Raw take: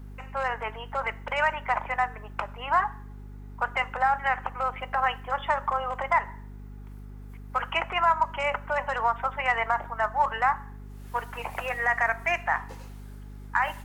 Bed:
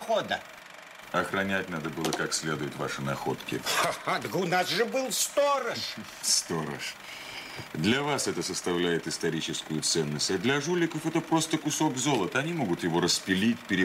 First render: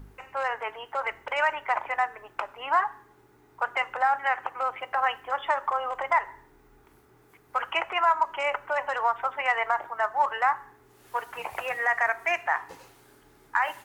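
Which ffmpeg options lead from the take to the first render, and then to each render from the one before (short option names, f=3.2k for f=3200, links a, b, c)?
-af "bandreject=f=50:t=h:w=4,bandreject=f=100:t=h:w=4,bandreject=f=150:t=h:w=4,bandreject=f=200:t=h:w=4,bandreject=f=250:t=h:w=4"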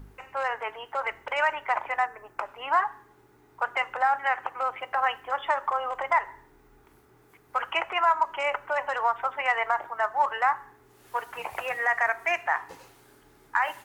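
-filter_complex "[0:a]asettb=1/sr,asplit=3[a][b][c];[a]atrim=end=2.064[d];[b]atrim=start=2.06:end=2.46,asetpts=PTS-STARTPTS,afade=t=in:d=0.004:c=qsin,afade=t=out:st=0.396:d=0.004:c=qsin,equalizer=f=3.2k:w=1.8:g=-8.5[e];[c]atrim=start=2.456[f];[d][e]acrossfade=d=0.004:c1=hsin:c2=qsin[g];[g][f]acrossfade=d=0.004:c1=qsin:c2=hsin"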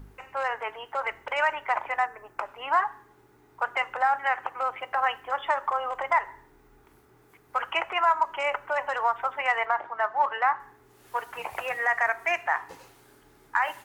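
-filter_complex "[0:a]asettb=1/sr,asplit=3[a][b][c];[a]atrim=end=9.654[d];[b]atrim=start=9.65:end=10.6,asetpts=PTS-STARTPTS,afade=t=in:d=0.004:c=qsin,afade=t=out:st=0.946:d=0.004:c=qsin,highpass=120,lowpass=4.3k[e];[c]atrim=start=10.596[f];[d][e]acrossfade=d=0.004:c1=hsin:c2=qsin[g];[g][f]acrossfade=d=0.004:c1=qsin:c2=hsin"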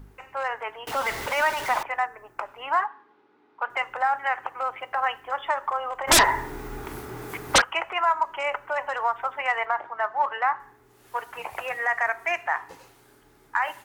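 -filter_complex "[0:a]asettb=1/sr,asplit=3[a][b][c];[a]atrim=end=0.874[d];[b]atrim=start=0.87:end=1.83,asetpts=PTS-STARTPTS,afade=t=in:d=0.004:c=qsin,afade=t=out:st=0.956:d=0.004:c=qsin,aeval=exprs='val(0)+0.5*0.0398*sgn(val(0))':c=same[e];[c]atrim=start=1.826[f];[d][e]acrossfade=d=0.004:c1=hsin:c2=qsin[g];[g][f]acrossfade=d=0.004:c1=qsin:c2=hsin,asettb=1/sr,asplit=3[h][i][j];[h]atrim=end=2.864[k];[i]atrim=start=2.86:end=3.7,asetpts=PTS-STARTPTS,afade=t=in:d=0.004:c=qsin,afade=t=out:st=0.836:d=0.004:c=qsin,highpass=f=220:w=0.5412,highpass=f=220:w=1.3066,equalizer=f=370:t=q:w=4:g=-4,equalizer=f=660:t=q:w=4:g=-4,equalizer=f=1.9k:t=q:w=4:g=-4,lowpass=f=4k:w=0.5412,lowpass=f=4k:w=1.3066[l];[j]atrim=start=3.696[m];[k][l]acrossfade=d=0.004:c1=hsin:c2=qsin[n];[n][m]acrossfade=d=0.004:c1=qsin:c2=hsin,asplit=3[o][p][q];[o]afade=t=out:st=6.07:d=0.02[r];[p]aeval=exprs='0.266*sin(PI/2*7.94*val(0)/0.266)':c=same,afade=t=in:st=6.07:d=0.02,afade=t=out:st=7.6:d=0.02[s];[q]afade=t=in:st=7.6:d=0.02[t];[r][s][t]amix=inputs=3:normalize=0"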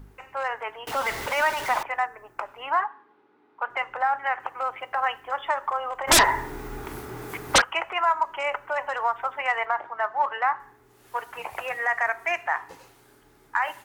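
-filter_complex "[0:a]asettb=1/sr,asplit=3[a][b][c];[a]atrim=end=2.704[d];[b]atrim=start=2.7:end=4.4,asetpts=PTS-STARTPTS,afade=t=in:d=0.004:c=qsin,afade=t=out:st=1.696:d=0.004:c=qsin,lowpass=f=3.6k:p=1[e];[c]atrim=start=4.396[f];[d][e]acrossfade=d=0.004:c1=hsin:c2=qsin[g];[g][f]acrossfade=d=0.004:c1=qsin:c2=hsin"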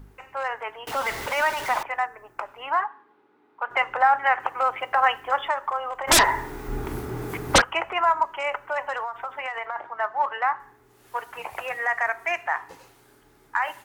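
-filter_complex "[0:a]asettb=1/sr,asplit=3[a][b][c];[a]atrim=end=6.684[d];[b]atrim=start=6.68:end=8.27,asetpts=PTS-STARTPTS,afade=t=in:d=0.004:c=qsin,afade=t=out:st=1.586:d=0.004:c=qsin,lowshelf=f=480:g=8.5[e];[c]atrim=start=8.266[f];[d][e]acrossfade=d=0.004:c1=hsin:c2=qsin[g];[g][f]acrossfade=d=0.004:c1=qsin:c2=hsin,asettb=1/sr,asplit=3[h][i][j];[h]atrim=end=9.004[k];[i]atrim=start=9:end=9.76,asetpts=PTS-STARTPTS,afade=t=in:d=0.004:c=qsin,afade=t=out:st=0.756:d=0.004:c=qsin,acompressor=threshold=-26dB:ratio=12:attack=3.2:release=140:knee=1:detection=peak[l];[j]atrim=start=9.756[m];[k][l]acrossfade=d=0.004:c1=hsin:c2=qsin[n];[n][m]acrossfade=d=0.004:c1=qsin:c2=hsin,asplit=3[o][p][q];[o]atrim=end=3.712[r];[p]atrim=start=3.708:end=5.482,asetpts=PTS-STARTPTS,volume=5.5dB[s];[q]atrim=start=5.478[t];[r][s]acrossfade=d=0.004:c1=hsin:c2=hsin[u];[u][t]acrossfade=d=0.004:c1=hsin:c2=hsin"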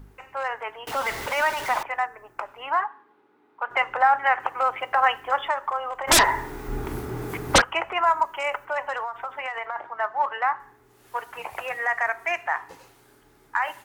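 -filter_complex "[0:a]asettb=1/sr,asplit=3[a][b][c];[a]atrim=end=8.064[d];[b]atrim=start=8.06:end=8.65,asetpts=PTS-STARTPTS,afade=t=in:d=0.004:c=qsin,afade=t=out:st=0.586:d=0.004:c=qsin,highshelf=f=8.5k:g=12[e];[c]atrim=start=8.646[f];[d][e]acrossfade=d=0.004:c1=hsin:c2=qsin[g];[g][f]acrossfade=d=0.004:c1=qsin:c2=hsin"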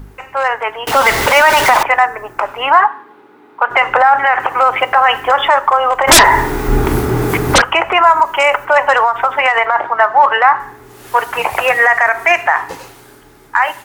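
-af "dynaudnorm=f=100:g=21:m=6.5dB,alimiter=level_in=13dB:limit=-1dB:release=50:level=0:latency=1"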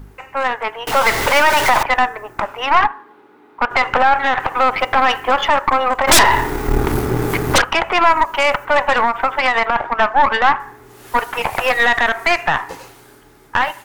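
-af "aeval=exprs='(tanh(1.78*val(0)+0.7)-tanh(0.7))/1.78':c=same"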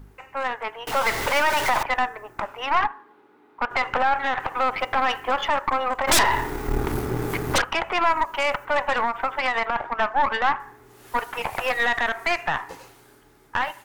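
-af "volume=-8dB"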